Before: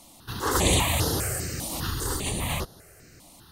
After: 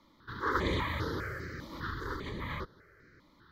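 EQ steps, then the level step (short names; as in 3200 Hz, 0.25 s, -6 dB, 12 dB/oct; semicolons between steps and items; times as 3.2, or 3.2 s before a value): tone controls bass +8 dB, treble -13 dB; three-band isolator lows -18 dB, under 350 Hz, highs -13 dB, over 3400 Hz; fixed phaser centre 2700 Hz, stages 6; 0.0 dB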